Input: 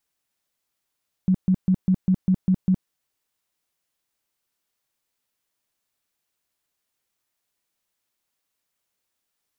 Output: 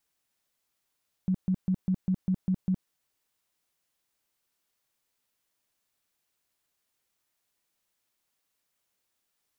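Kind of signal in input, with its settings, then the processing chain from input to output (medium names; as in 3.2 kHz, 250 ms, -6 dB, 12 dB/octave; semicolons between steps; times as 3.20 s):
tone bursts 186 Hz, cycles 12, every 0.20 s, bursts 8, -14.5 dBFS
peak limiter -22 dBFS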